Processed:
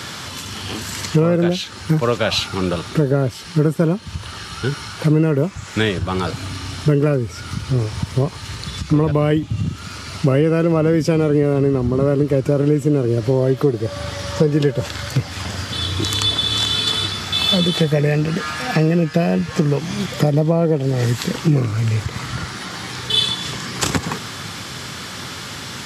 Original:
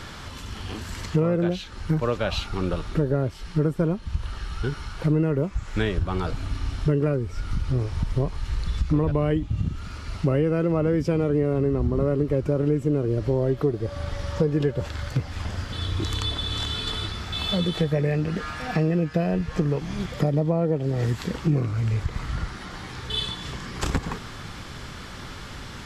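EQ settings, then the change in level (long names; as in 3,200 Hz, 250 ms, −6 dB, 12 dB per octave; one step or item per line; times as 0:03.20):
high-pass filter 94 Hz 24 dB per octave
high-shelf EQ 3,100 Hz +9 dB
+6.5 dB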